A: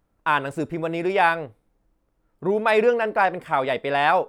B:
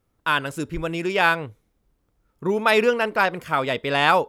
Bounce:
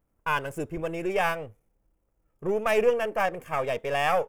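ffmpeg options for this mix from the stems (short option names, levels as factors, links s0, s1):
-filter_complex "[0:a]equalizer=f=5400:w=0.33:g=-10.5,volume=0.562[s0];[1:a]aeval=exprs='if(lt(val(0),0),0.251*val(0),val(0))':c=same,aexciter=amount=1.1:drive=1:freq=2100,adelay=1.7,volume=0.376[s1];[s0][s1]amix=inputs=2:normalize=0"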